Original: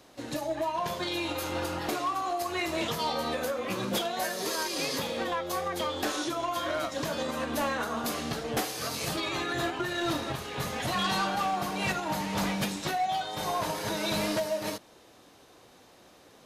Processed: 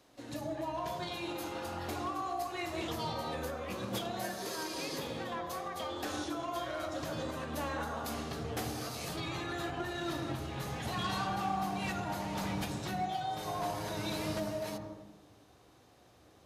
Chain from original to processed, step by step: on a send: bell 820 Hz +4 dB 0.77 oct + reverb RT60 1.1 s, pre-delay 77 ms, DRR 5.5 dB; on the sum: gain -8.5 dB

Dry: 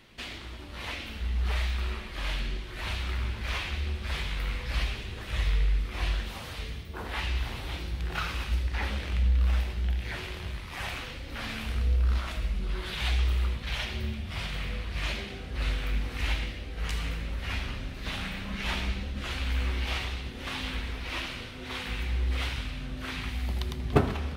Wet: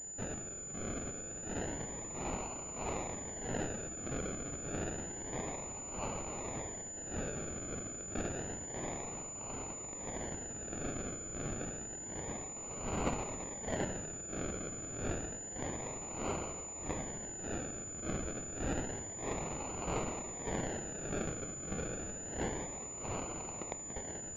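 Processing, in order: inverse Chebyshev high-pass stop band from 800 Hz, stop band 70 dB; decimation with a swept rate 36×, swing 60% 0.29 Hz; pulse-width modulation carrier 7000 Hz; gain +6.5 dB

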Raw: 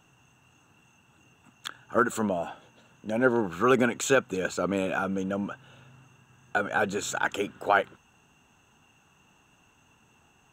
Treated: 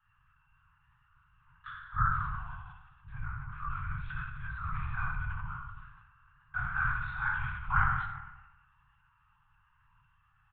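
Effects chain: bin magnitudes rounded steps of 15 dB; LPF 3000 Hz 12 dB/oct; 2.31–4.47 compressor 6:1, threshold -30 dBFS, peak gain reduction 12.5 dB; band shelf 1200 Hz +11.5 dB; resonator 61 Hz, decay 1.1 s, harmonics all, mix 100%; speakerphone echo 0.25 s, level -18 dB; LPC vocoder at 8 kHz whisper; elliptic band-stop 140–1100 Hz, stop band 40 dB; low shelf 420 Hz +11 dB; sustainer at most 53 dB/s

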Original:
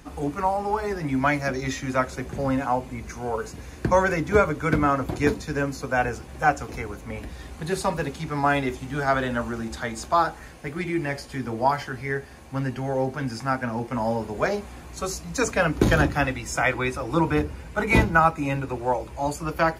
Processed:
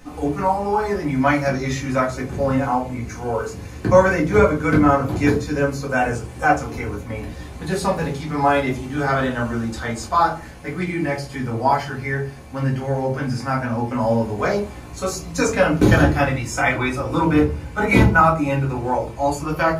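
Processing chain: 5.89–6.46 bell 8400 Hz +8.5 dB 0.37 oct; shoebox room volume 120 m³, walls furnished, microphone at 2 m; gain -1 dB

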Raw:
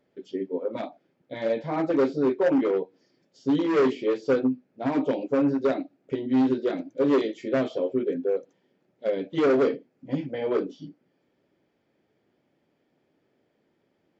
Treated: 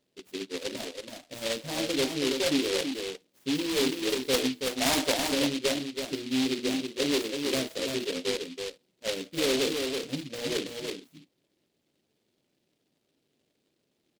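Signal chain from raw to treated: 4.33–5.14 band shelf 1500 Hz +12.5 dB 2.9 oct; echo 0.328 s -5 dB; noise-modulated delay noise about 3200 Hz, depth 0.21 ms; gain -6 dB

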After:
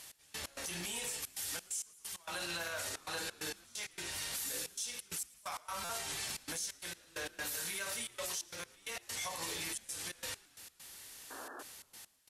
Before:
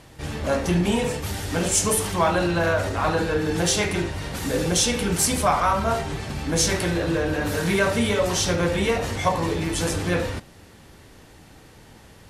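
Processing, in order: pre-emphasis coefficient 0.97; compressor 4:1, threshold -42 dBFS, peak gain reduction 20.5 dB; limiter -36 dBFS, peak gain reduction 11.5 dB; step gate "x..x.xxxxxx.xx." 132 bpm -24 dB; painted sound noise, 11.3–11.63, 230–1800 Hz -55 dBFS; frequency-shifting echo 0.113 s, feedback 65%, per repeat -110 Hz, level -22.5 dB; stuck buffer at 5.84, samples 256; gain +6.5 dB

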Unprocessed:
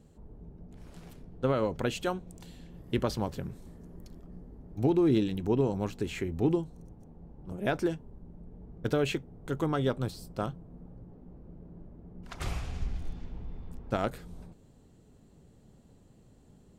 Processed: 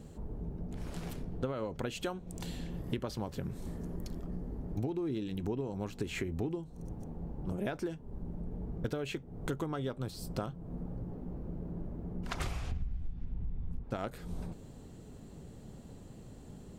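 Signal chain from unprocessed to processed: 12.71–13.84 tone controls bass +12 dB, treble -8 dB; compressor 12:1, threshold -41 dBFS, peak gain reduction 25.5 dB; gain +8.5 dB

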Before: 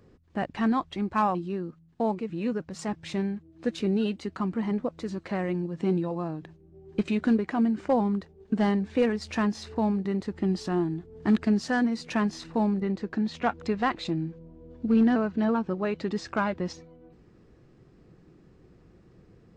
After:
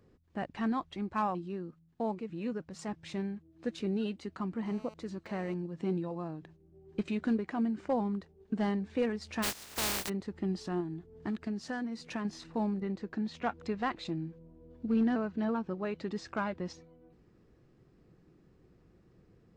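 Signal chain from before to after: 4.66–5.54 GSM buzz -47 dBFS; 9.42–10.08 spectral contrast lowered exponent 0.17; 10.8–12.25 compressor 3:1, threshold -27 dBFS, peak gain reduction 7.5 dB; gain -7 dB

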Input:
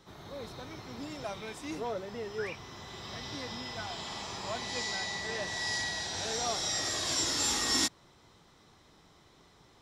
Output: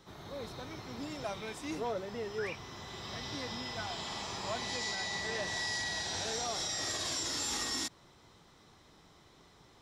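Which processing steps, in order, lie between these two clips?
limiter -26.5 dBFS, peak gain reduction 10 dB

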